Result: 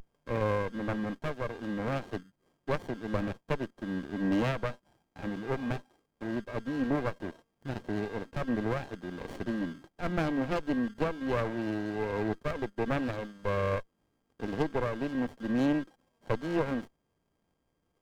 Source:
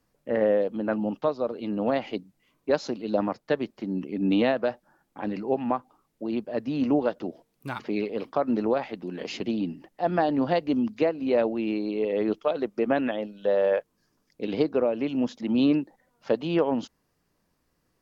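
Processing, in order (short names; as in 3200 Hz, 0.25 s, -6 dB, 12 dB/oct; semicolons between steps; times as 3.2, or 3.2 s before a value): whine 1600 Hz -35 dBFS; running maximum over 33 samples; gain -4.5 dB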